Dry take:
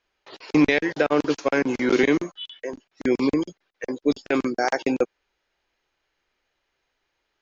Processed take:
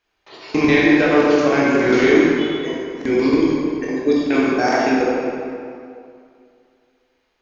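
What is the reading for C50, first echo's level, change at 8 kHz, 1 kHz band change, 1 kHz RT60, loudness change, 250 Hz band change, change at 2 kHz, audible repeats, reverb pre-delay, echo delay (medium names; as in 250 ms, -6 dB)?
-2.5 dB, no echo, no reading, +7.5 dB, 2.4 s, +6.0 dB, +7.0 dB, +7.0 dB, no echo, 16 ms, no echo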